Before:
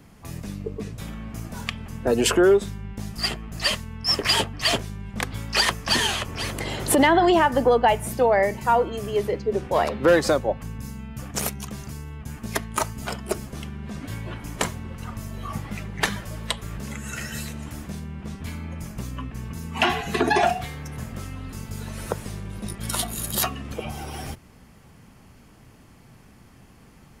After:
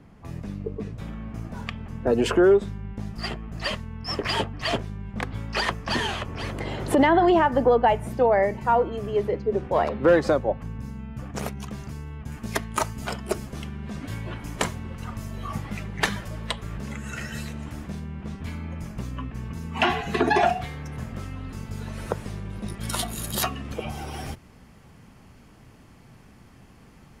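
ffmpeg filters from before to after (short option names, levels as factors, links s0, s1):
-af "asetnsamples=n=441:p=0,asendcmd='11.57 lowpass f 3000;12.32 lowpass f 7200;16.28 lowpass f 3400;22.73 lowpass f 6900',lowpass=f=1600:p=1"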